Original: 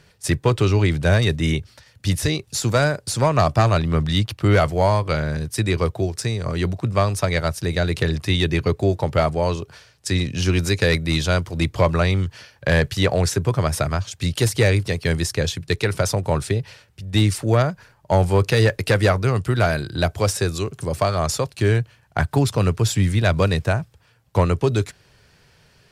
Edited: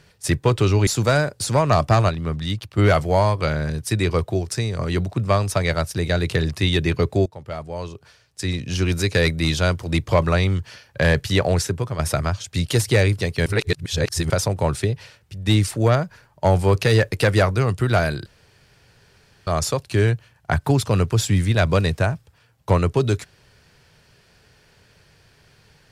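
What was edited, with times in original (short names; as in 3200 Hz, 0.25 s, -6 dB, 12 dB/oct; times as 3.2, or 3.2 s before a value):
0.87–2.54 cut
3.76–4.45 gain -5.5 dB
8.93–10.93 fade in, from -19 dB
13.21–13.66 fade out, to -9.5 dB
15.13–15.97 reverse
19.93–21.14 room tone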